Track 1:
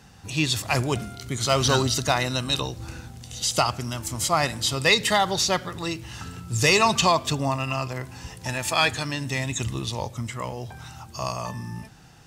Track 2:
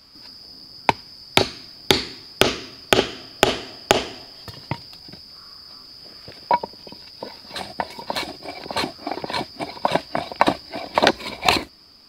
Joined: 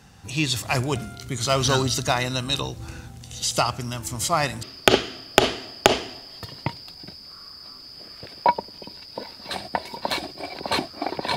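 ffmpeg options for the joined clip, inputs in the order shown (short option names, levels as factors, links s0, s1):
-filter_complex "[0:a]apad=whole_dur=11.36,atrim=end=11.36,atrim=end=4.632[s0];[1:a]atrim=start=2.678:end=9.41[s1];[s0][s1]acrossfade=d=0.004:c1=hsin:c2=hsin"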